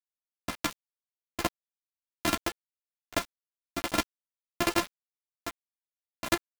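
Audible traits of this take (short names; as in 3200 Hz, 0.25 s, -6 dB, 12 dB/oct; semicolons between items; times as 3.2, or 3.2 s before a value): a buzz of ramps at a fixed pitch in blocks of 128 samples; tremolo saw up 5.5 Hz, depth 55%; a quantiser's noise floor 6-bit, dither none; a shimmering, thickened sound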